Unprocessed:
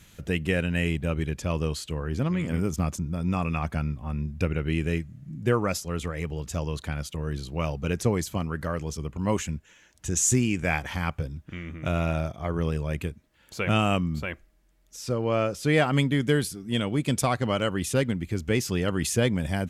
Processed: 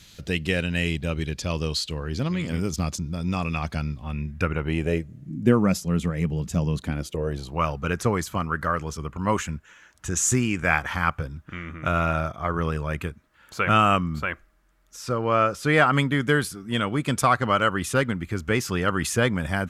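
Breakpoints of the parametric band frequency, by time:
parametric band +12 dB 0.99 octaves
0:03.98 4,400 Hz
0:04.53 1,100 Hz
0:05.61 190 Hz
0:06.77 190 Hz
0:07.66 1,300 Hz

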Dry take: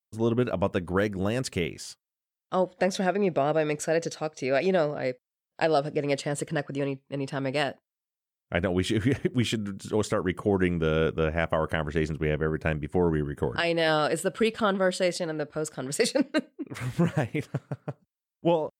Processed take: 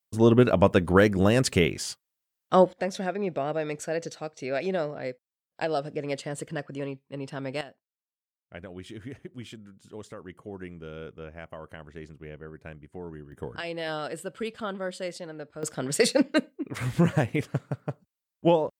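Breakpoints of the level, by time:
+6.5 dB
from 0:02.73 −4.5 dB
from 0:07.61 −15.5 dB
from 0:13.32 −8.5 dB
from 0:15.63 +2.5 dB

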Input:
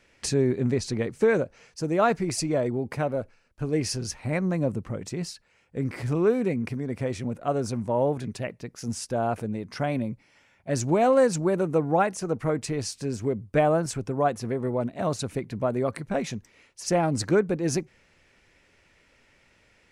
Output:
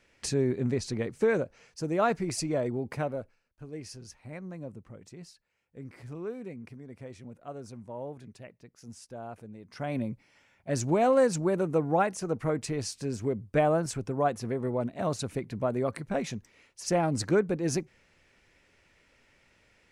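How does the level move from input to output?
0:03.02 −4 dB
0:03.64 −15 dB
0:09.57 −15 dB
0:09.99 −3 dB

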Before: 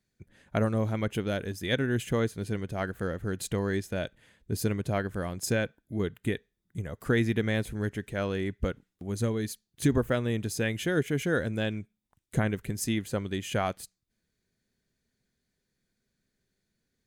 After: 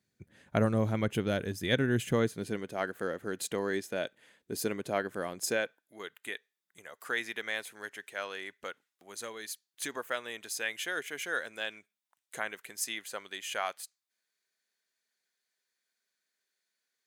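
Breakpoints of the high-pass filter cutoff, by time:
0:02.05 89 Hz
0:02.70 300 Hz
0:05.40 300 Hz
0:05.94 880 Hz

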